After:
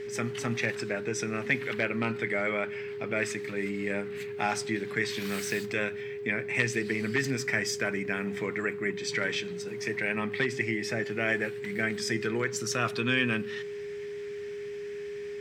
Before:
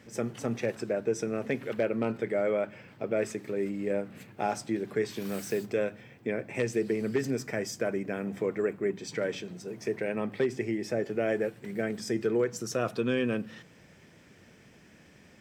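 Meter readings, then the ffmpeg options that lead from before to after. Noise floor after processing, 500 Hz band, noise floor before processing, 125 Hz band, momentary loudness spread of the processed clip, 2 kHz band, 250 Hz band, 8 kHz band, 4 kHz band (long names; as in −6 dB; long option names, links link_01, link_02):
−38 dBFS, −2.0 dB, −57 dBFS, +2.0 dB, 9 LU, +10.0 dB, −1.0 dB, +5.0 dB, +8.0 dB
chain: -af "equalizer=frequency=125:width_type=o:width=1:gain=3,equalizer=frequency=500:width_type=o:width=1:gain=-9,equalizer=frequency=1000:width_type=o:width=1:gain=3,equalizer=frequency=2000:width_type=o:width=1:gain=10,equalizer=frequency=4000:width_type=o:width=1:gain=7,equalizer=frequency=8000:width_type=o:width=1:gain=3,aeval=exprs='val(0)+0.0178*sin(2*PI*410*n/s)':channel_layout=same"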